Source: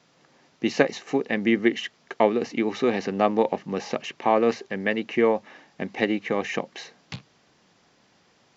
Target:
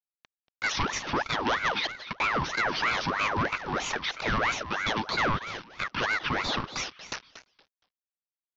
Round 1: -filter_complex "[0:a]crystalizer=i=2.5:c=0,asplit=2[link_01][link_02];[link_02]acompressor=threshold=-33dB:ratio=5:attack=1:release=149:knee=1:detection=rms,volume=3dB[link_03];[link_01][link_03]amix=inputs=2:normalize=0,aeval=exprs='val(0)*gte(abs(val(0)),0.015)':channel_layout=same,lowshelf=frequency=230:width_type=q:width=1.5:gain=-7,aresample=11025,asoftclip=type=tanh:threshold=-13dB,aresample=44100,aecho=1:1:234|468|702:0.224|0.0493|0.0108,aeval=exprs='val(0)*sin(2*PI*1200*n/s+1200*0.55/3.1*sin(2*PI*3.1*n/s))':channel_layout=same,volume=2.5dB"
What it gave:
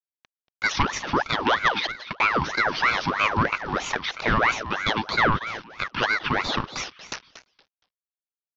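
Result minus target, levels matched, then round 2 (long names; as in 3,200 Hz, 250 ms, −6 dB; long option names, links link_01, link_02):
soft clipping: distortion −7 dB
-filter_complex "[0:a]crystalizer=i=2.5:c=0,asplit=2[link_01][link_02];[link_02]acompressor=threshold=-33dB:ratio=5:attack=1:release=149:knee=1:detection=rms,volume=3dB[link_03];[link_01][link_03]amix=inputs=2:normalize=0,aeval=exprs='val(0)*gte(abs(val(0)),0.015)':channel_layout=same,lowshelf=frequency=230:width_type=q:width=1.5:gain=-7,aresample=11025,asoftclip=type=tanh:threshold=-23dB,aresample=44100,aecho=1:1:234|468|702:0.224|0.0493|0.0108,aeval=exprs='val(0)*sin(2*PI*1200*n/s+1200*0.55/3.1*sin(2*PI*3.1*n/s))':channel_layout=same,volume=2.5dB"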